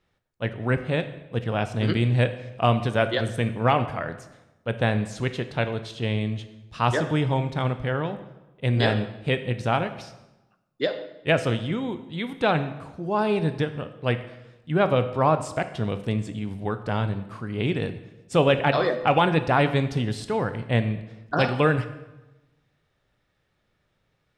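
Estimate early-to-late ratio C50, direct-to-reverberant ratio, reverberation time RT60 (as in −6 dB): 12.5 dB, 10.0 dB, 1.0 s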